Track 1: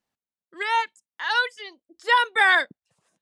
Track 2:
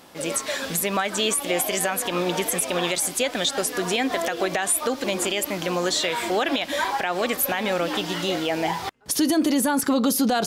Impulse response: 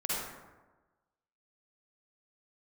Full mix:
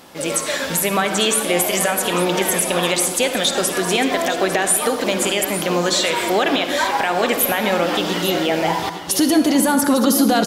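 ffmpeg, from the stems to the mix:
-filter_complex "[0:a]volume=0.2[s0];[1:a]volume=1.41,asplit=3[s1][s2][s3];[s2]volume=0.282[s4];[s3]volume=0.316[s5];[2:a]atrim=start_sample=2205[s6];[s4][s6]afir=irnorm=-1:irlink=0[s7];[s5]aecho=0:1:852:1[s8];[s0][s1][s7][s8]amix=inputs=4:normalize=0"

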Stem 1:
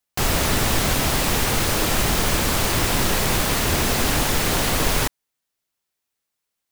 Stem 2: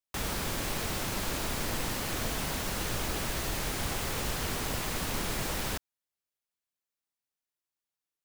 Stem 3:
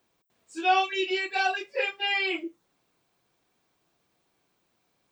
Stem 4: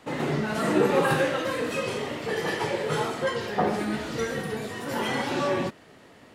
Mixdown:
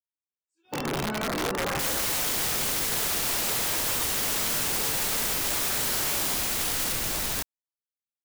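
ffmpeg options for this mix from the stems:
-filter_complex "[0:a]adelay=1850,volume=0.224[s0];[1:a]adelay=1650,volume=1.26[s1];[2:a]flanger=delay=1.3:depth=8.9:regen=-39:speed=0.63:shape=triangular,aecho=1:1:2.2:0.46,acrusher=bits=8:mode=log:mix=0:aa=0.000001,volume=0.2[s2];[3:a]lowpass=f=1400:w=0.5412,lowpass=f=1400:w=1.3066,alimiter=limit=0.0891:level=0:latency=1:release=83,adelay=650,volume=1.06[s3];[s0][s1][s2][s3]amix=inputs=4:normalize=0,agate=range=0.0891:threshold=0.0251:ratio=16:detection=peak,highshelf=f=4700:g=7,aeval=exprs='(mod(12.6*val(0)+1,2)-1)/12.6':c=same"

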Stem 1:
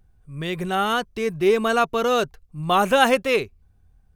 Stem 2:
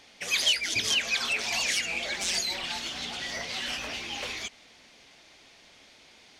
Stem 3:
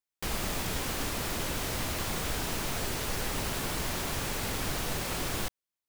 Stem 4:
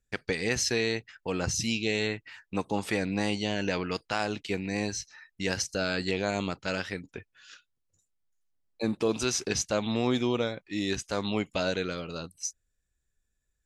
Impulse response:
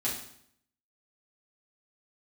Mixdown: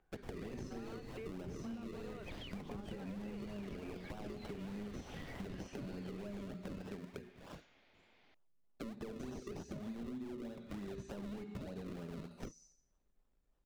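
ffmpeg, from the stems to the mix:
-filter_complex "[0:a]highpass=370,acompressor=threshold=0.0398:ratio=6,volume=0.668[s0];[1:a]adelay=1950,volume=0.282[s1];[2:a]volume=0.15,asplit=2[s2][s3];[s3]volume=0.178[s4];[3:a]volume=16.8,asoftclip=hard,volume=0.0596,bandreject=f=60:t=h:w=6,bandreject=f=120:t=h:w=6,bandreject=f=180:t=h:w=6,bandreject=f=240:t=h:w=6,bandreject=f=300:t=h:w=6,bandreject=f=360:t=h:w=6,aecho=1:1:5:0.62,volume=0.794,asplit=2[s5][s6];[s6]volume=0.119[s7];[s0][s1]amix=inputs=2:normalize=0,lowpass=2700,acompressor=threshold=0.00398:ratio=2,volume=1[s8];[s2][s5]amix=inputs=2:normalize=0,acrusher=samples=38:mix=1:aa=0.000001:lfo=1:lforange=38:lforate=3.3,acompressor=threshold=0.0178:ratio=6,volume=1[s9];[4:a]atrim=start_sample=2205[s10];[s4][s7]amix=inputs=2:normalize=0[s11];[s11][s10]afir=irnorm=-1:irlink=0[s12];[s8][s9][s12]amix=inputs=3:normalize=0,acrossover=split=410[s13][s14];[s14]acompressor=threshold=0.00447:ratio=6[s15];[s13][s15]amix=inputs=2:normalize=0,highshelf=f=7200:g=-7.5,acompressor=threshold=0.00794:ratio=6"

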